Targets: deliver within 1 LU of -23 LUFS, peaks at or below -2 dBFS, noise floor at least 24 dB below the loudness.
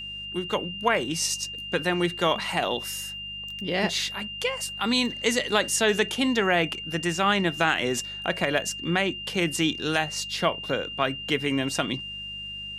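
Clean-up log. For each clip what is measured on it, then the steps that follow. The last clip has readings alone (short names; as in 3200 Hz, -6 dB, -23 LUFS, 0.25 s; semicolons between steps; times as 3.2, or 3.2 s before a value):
hum 50 Hz; harmonics up to 200 Hz; hum level -45 dBFS; steady tone 2800 Hz; tone level -34 dBFS; loudness -26.0 LUFS; peak -7.5 dBFS; loudness target -23.0 LUFS
-> de-hum 50 Hz, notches 4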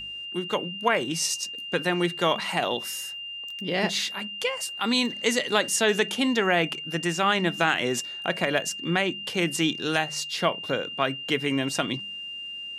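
hum none; steady tone 2800 Hz; tone level -34 dBFS
-> notch 2800 Hz, Q 30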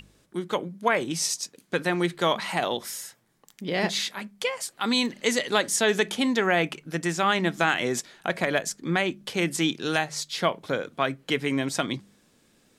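steady tone none; loudness -26.5 LUFS; peak -7.5 dBFS; loudness target -23.0 LUFS
-> gain +3.5 dB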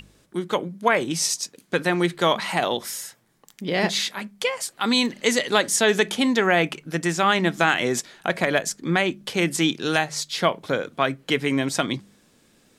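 loudness -23.0 LUFS; peak -4.0 dBFS; noise floor -61 dBFS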